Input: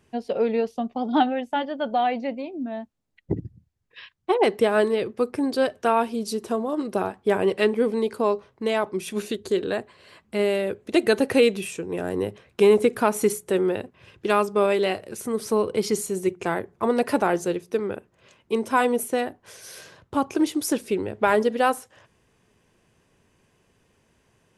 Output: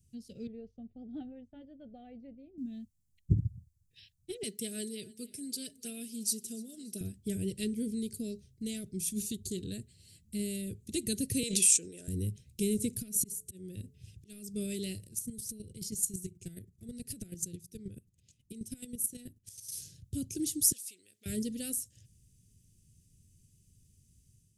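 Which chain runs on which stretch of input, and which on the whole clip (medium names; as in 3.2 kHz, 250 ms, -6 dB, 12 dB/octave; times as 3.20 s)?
0.47–2.58 s: resonant low-pass 950 Hz, resonance Q 7.4 + peaking EQ 210 Hz -11.5 dB 1.5 oct
4.43–7.01 s: high-pass 580 Hz 6 dB/octave + comb 4.7 ms, depth 48% + feedback delay 292 ms, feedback 47%, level -22 dB
11.43–12.08 s: cabinet simulation 490–9800 Hz, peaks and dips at 590 Hz +6 dB, 880 Hz +5 dB, 1.5 kHz +3 dB + decay stretcher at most 25 dB/s
12.97–14.54 s: de-hum 143.7 Hz, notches 4 + slow attack 390 ms + compression 12:1, threshold -27 dBFS
15.06–19.72 s: compression, threshold -22 dBFS + square tremolo 9.3 Hz, depth 65%, duty 20%
20.72–21.26 s: compression 2:1, threshold -31 dBFS + high-pass 1.1 kHz
whole clip: Chebyshev band-stop 110–7800 Hz, order 2; level rider gain up to 6 dB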